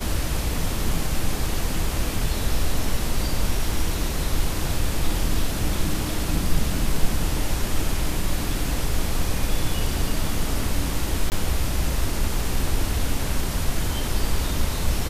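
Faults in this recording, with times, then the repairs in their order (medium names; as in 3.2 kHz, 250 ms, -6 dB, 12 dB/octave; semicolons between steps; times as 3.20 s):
11.30–11.32 s: dropout 19 ms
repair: interpolate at 11.30 s, 19 ms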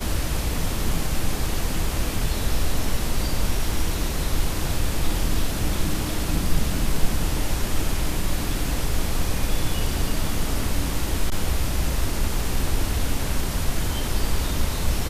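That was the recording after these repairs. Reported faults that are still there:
nothing left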